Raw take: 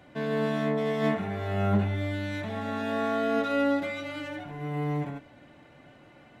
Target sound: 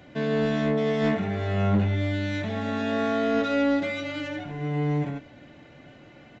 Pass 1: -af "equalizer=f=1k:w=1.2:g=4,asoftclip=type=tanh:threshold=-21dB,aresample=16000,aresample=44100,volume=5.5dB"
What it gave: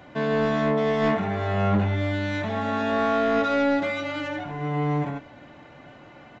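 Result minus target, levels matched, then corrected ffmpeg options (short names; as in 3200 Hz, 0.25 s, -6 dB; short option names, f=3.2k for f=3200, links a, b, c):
1000 Hz band +4.5 dB
-af "equalizer=f=1k:w=1.2:g=-5.5,asoftclip=type=tanh:threshold=-21dB,aresample=16000,aresample=44100,volume=5.5dB"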